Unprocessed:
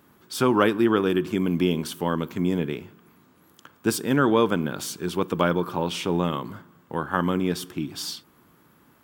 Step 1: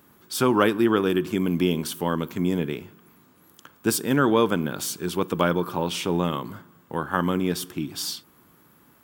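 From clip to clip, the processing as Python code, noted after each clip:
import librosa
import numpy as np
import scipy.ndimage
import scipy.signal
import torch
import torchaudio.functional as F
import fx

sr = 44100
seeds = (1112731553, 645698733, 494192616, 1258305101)

y = fx.high_shelf(x, sr, hz=7300.0, db=6.5)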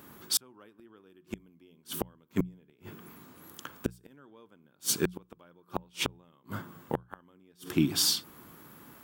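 y = fx.gate_flip(x, sr, shuts_db=-17.0, range_db=-40)
y = fx.hum_notches(y, sr, base_hz=60, count=3)
y = y * librosa.db_to_amplitude(4.5)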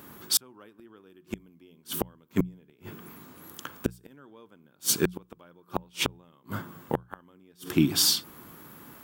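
y = fx.peak_eq(x, sr, hz=14000.0, db=3.0, octaves=0.25)
y = y * librosa.db_to_amplitude(3.5)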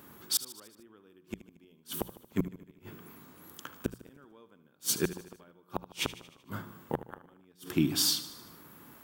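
y = fx.echo_feedback(x, sr, ms=76, feedback_pct=58, wet_db=-15.0)
y = y * librosa.db_to_amplitude(-5.0)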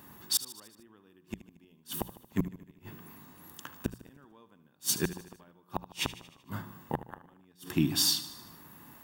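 y = x + 0.37 * np.pad(x, (int(1.1 * sr / 1000.0), 0))[:len(x)]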